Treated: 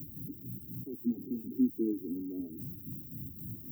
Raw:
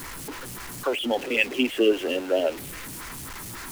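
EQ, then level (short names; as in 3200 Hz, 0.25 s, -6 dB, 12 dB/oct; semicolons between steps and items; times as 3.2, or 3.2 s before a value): HPF 88 Hz 24 dB/oct; inverse Chebyshev band-stop 930–7100 Hz, stop band 60 dB; fixed phaser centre 2000 Hz, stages 6; +2.0 dB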